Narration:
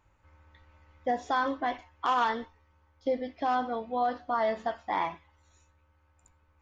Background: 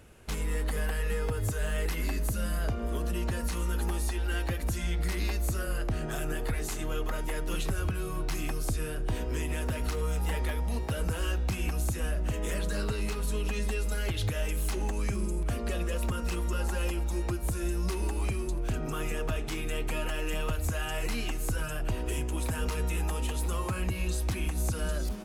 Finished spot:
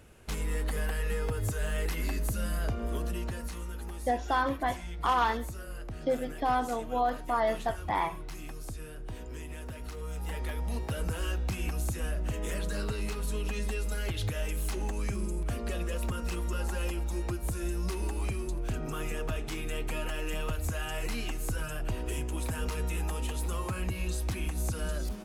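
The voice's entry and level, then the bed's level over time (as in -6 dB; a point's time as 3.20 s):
3.00 s, 0.0 dB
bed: 2.98 s -1 dB
3.77 s -9.5 dB
9.89 s -9.5 dB
10.69 s -2 dB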